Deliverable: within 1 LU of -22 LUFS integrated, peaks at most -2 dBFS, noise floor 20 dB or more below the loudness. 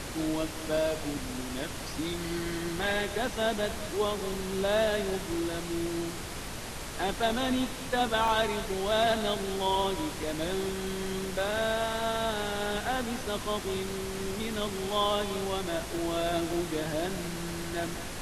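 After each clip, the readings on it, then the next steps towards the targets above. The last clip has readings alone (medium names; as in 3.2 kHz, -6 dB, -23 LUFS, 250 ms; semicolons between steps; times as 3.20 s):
dropouts 3; longest dropout 2.3 ms; noise floor -38 dBFS; noise floor target -51 dBFS; loudness -31.0 LUFS; peak level -14.5 dBFS; loudness target -22.0 LUFS
-> interpolate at 8.28/15.98/16.53 s, 2.3 ms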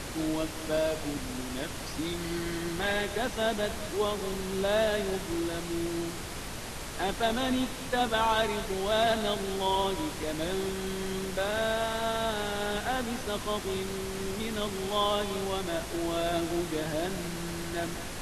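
dropouts 0; noise floor -38 dBFS; noise floor target -51 dBFS
-> noise print and reduce 13 dB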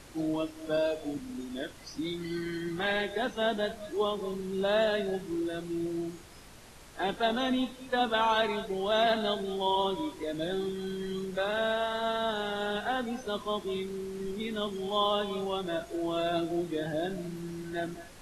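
noise floor -50 dBFS; noise floor target -52 dBFS
-> noise print and reduce 6 dB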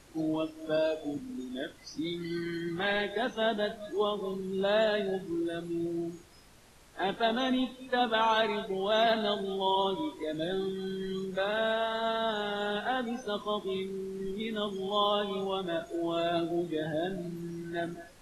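noise floor -55 dBFS; loudness -31.5 LUFS; peak level -15.0 dBFS; loudness target -22.0 LUFS
-> trim +9.5 dB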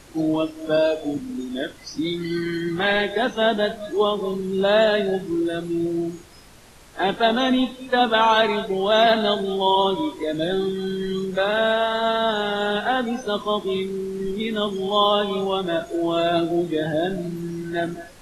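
loudness -22.0 LUFS; peak level -5.5 dBFS; noise floor -46 dBFS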